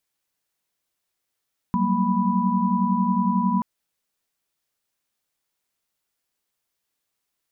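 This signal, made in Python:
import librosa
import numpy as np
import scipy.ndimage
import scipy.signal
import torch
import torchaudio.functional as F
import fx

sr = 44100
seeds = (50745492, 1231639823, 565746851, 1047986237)

y = fx.chord(sr, length_s=1.88, notes=(54, 55, 58, 83), wave='sine', level_db=-24.0)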